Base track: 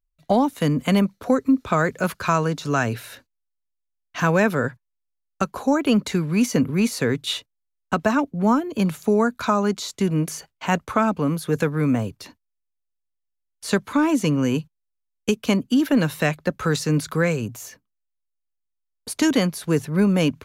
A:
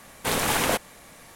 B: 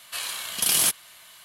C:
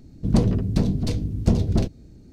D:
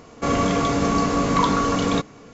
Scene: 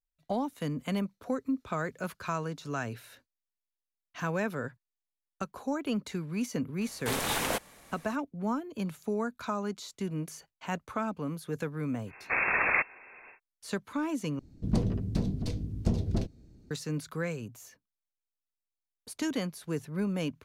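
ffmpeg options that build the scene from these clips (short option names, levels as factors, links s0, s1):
-filter_complex "[1:a]asplit=2[s0][s1];[0:a]volume=0.224[s2];[s1]lowpass=f=2300:t=q:w=0.5098,lowpass=f=2300:t=q:w=0.6013,lowpass=f=2300:t=q:w=0.9,lowpass=f=2300:t=q:w=2.563,afreqshift=-2700[s3];[s2]asplit=2[s4][s5];[s4]atrim=end=14.394[s6];[3:a]atrim=end=2.32,asetpts=PTS-STARTPTS,volume=0.355[s7];[s5]atrim=start=16.706[s8];[s0]atrim=end=1.35,asetpts=PTS-STARTPTS,volume=0.447,afade=t=in:d=0.004:c=hsin,afade=t=out:st=1.346:d=0.004:c=hsin,adelay=6810[s9];[s3]atrim=end=1.35,asetpts=PTS-STARTPTS,volume=0.841,afade=t=in:d=0.1,afade=t=out:st=1.25:d=0.1,adelay=12050[s10];[s6][s7]acrossfade=d=0.004:c1=hsin:c2=hsin[s11];[s11][s8]acrossfade=d=0.004:c1=hsin:c2=hsin[s12];[s12][s9][s10]amix=inputs=3:normalize=0"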